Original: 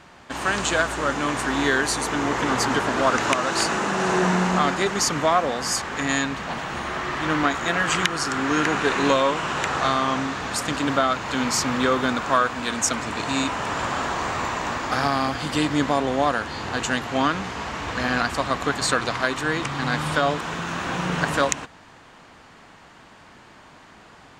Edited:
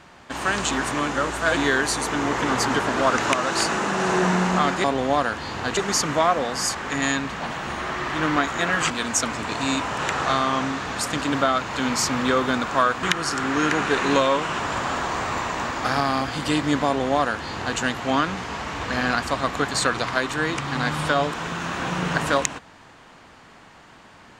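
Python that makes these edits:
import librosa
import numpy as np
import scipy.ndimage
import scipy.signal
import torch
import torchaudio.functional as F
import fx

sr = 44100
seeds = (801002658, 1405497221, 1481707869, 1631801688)

y = fx.edit(x, sr, fx.reverse_span(start_s=0.71, length_s=0.86),
    fx.swap(start_s=7.97, length_s=1.57, other_s=12.58, other_length_s=1.09),
    fx.duplicate(start_s=15.93, length_s=0.93, to_s=4.84), tone=tone)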